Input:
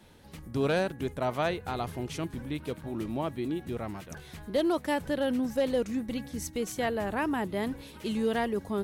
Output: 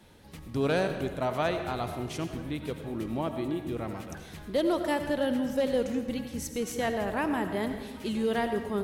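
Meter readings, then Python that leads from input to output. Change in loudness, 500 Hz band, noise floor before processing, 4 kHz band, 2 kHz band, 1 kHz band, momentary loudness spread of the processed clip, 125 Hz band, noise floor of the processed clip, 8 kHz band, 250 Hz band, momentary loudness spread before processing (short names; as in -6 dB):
+0.5 dB, +1.0 dB, -50 dBFS, +0.5 dB, +0.5 dB, +1.0 dB, 8 LU, +0.5 dB, -46 dBFS, +0.5 dB, +0.5 dB, 9 LU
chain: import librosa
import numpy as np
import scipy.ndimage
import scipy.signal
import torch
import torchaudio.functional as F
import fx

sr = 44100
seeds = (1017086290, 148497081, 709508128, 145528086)

y = fx.rev_freeverb(x, sr, rt60_s=1.3, hf_ratio=0.75, predelay_ms=45, drr_db=7.0)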